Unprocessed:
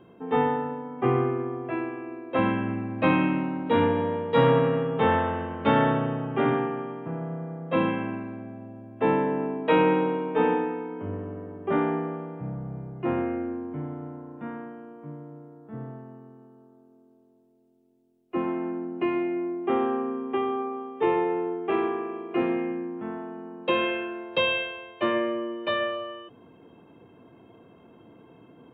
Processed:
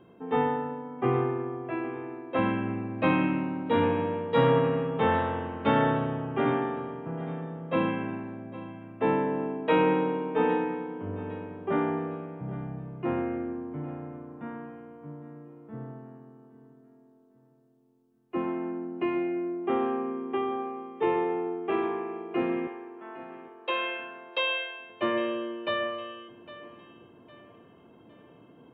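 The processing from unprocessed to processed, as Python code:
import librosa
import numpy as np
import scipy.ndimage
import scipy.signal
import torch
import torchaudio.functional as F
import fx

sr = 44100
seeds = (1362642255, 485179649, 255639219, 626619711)

y = fx.highpass(x, sr, hz=620.0, slope=12, at=(22.67, 24.9))
y = fx.echo_feedback(y, sr, ms=808, feedback_pct=38, wet_db=-16.5)
y = y * 10.0 ** (-2.5 / 20.0)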